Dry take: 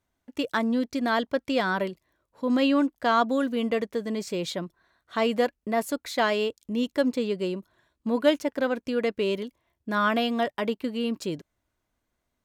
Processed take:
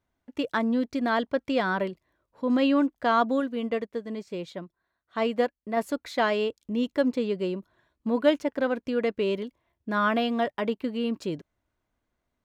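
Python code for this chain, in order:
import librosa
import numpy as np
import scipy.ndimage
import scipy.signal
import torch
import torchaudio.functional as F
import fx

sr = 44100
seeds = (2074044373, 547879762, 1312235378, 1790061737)

y = fx.high_shelf(x, sr, hz=5100.0, db=-11.0)
y = fx.upward_expand(y, sr, threshold_db=-43.0, expansion=1.5, at=(3.4, 5.77))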